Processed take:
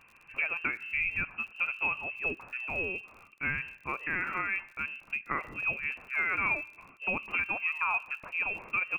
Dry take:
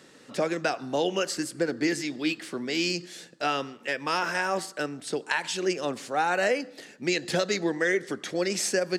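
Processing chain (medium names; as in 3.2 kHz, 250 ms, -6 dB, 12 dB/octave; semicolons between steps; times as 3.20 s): frequency inversion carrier 2.9 kHz; crackle 57 per s -40 dBFS; trim -5 dB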